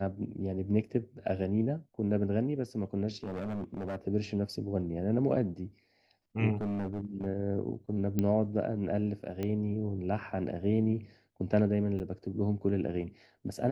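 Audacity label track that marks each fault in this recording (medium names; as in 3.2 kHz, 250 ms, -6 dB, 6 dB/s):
3.240000	3.960000	clipped -32.5 dBFS
6.560000	7.260000	clipped -30 dBFS
8.190000	8.190000	pop -17 dBFS
9.430000	9.430000	pop -22 dBFS
11.990000	12.000000	dropout 9.2 ms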